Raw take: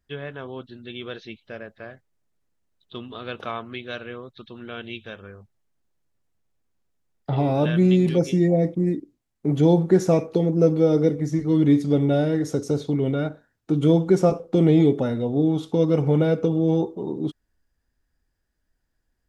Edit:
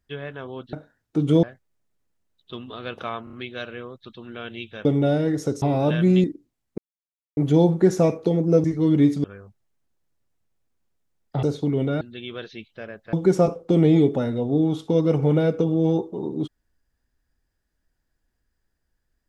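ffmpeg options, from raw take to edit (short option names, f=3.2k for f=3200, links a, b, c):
-filter_complex "[0:a]asplit=15[a][b][c][d][e][f][g][h][i][j][k][l][m][n][o];[a]atrim=end=0.732[p];[b]atrim=start=13.268:end=13.972[q];[c]atrim=start=1.848:end=3.692[r];[d]atrim=start=3.658:end=3.692[s];[e]atrim=start=3.658:end=3.692[t];[f]atrim=start=3.658:end=5.182[u];[g]atrim=start=11.918:end=12.692[v];[h]atrim=start=7.368:end=7.992[w];[i]atrim=start=8.918:end=9.46,asetpts=PTS-STARTPTS,afade=t=out:st=0.538:d=0.004:c=hsin,apad=pad_dur=0.59[x];[j]atrim=start=9.46:end=10.732,asetpts=PTS-STARTPTS,afade=t=in:d=0.004:c=hsin[y];[k]atrim=start=11.318:end=11.922[z];[l]atrim=start=5.178:end=7.372[aa];[m]atrim=start=12.688:end=13.272[ab];[n]atrim=start=0.728:end=1.852[ac];[o]atrim=start=13.968[ad];[p][q]acrossfade=d=0.004:c1=hsin:c2=hsin[ae];[ae][r]acrossfade=d=0.004:c1=hsin:c2=hsin[af];[af][s]acrossfade=d=0.004:c1=hsin:c2=hsin[ag];[ag][t]acrossfade=d=0.004:c1=hsin:c2=hsin[ah];[ah][u]acrossfade=d=0.004:c1=hsin:c2=hsin[ai];[ai][v]acrossfade=d=0.004:c1=hsin:c2=hsin[aj];[aj][w]acrossfade=d=0.004:c1=hsin:c2=hsin[ak];[x][y]concat=n=2:v=0:a=1[al];[ak][al]acrossfade=d=0.004:c1=hsin:c2=hsin[am];[am][z]acrossfade=d=0.004:c1=hsin:c2=hsin[an];[an][aa]acrossfade=d=0.004:c1=hsin:c2=hsin[ao];[ao][ab]acrossfade=d=0.004:c1=hsin:c2=hsin[ap];[ap][ac]acrossfade=d=0.004:c1=hsin:c2=hsin[aq];[aq][ad]acrossfade=d=0.004:c1=hsin:c2=hsin"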